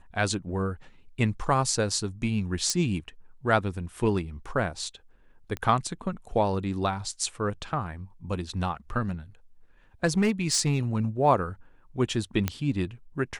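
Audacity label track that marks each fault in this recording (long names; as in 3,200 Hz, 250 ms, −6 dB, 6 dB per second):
2.700000	2.700000	click −12 dBFS
5.570000	5.570000	click −19 dBFS
10.050000	10.800000	clipping −18 dBFS
12.480000	12.480000	click −11 dBFS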